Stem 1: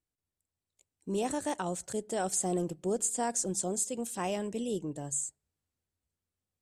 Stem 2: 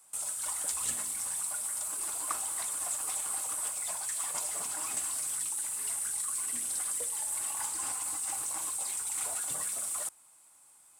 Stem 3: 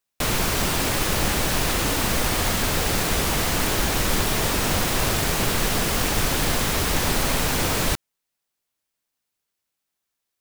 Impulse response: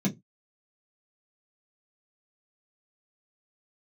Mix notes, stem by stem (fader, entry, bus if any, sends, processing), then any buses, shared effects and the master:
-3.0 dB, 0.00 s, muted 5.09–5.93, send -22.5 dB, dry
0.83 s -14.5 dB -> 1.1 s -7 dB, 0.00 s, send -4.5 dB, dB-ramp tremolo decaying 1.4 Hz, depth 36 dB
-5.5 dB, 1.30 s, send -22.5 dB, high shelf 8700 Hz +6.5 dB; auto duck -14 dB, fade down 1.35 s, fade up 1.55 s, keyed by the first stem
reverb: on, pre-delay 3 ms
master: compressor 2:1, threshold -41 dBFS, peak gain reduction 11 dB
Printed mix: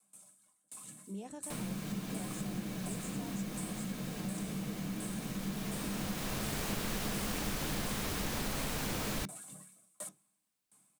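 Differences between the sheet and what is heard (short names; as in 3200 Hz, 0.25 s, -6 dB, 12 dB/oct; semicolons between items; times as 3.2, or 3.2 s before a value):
stem 1 -3.0 dB -> -14.5 dB; stem 3: missing high shelf 8700 Hz +6.5 dB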